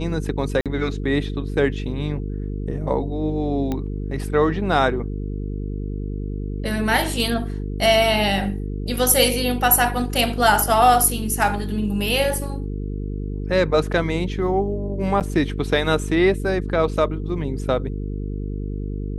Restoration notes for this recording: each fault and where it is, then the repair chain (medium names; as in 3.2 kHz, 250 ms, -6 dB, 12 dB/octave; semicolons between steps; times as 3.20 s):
buzz 50 Hz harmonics 9 -27 dBFS
0.61–0.66 s: dropout 47 ms
3.72 s: pop -13 dBFS
15.20–15.21 s: dropout 8.1 ms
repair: de-click; de-hum 50 Hz, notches 9; interpolate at 0.61 s, 47 ms; interpolate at 15.20 s, 8.1 ms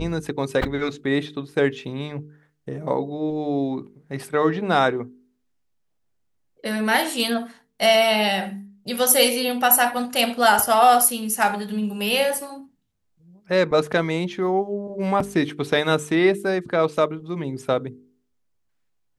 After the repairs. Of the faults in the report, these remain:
nothing left